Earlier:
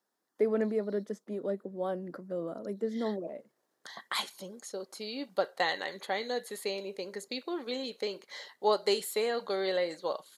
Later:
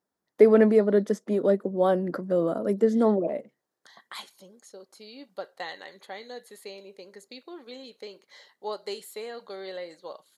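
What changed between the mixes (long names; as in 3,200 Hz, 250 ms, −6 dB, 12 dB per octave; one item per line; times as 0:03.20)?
first voice +11.5 dB
second voice −7.0 dB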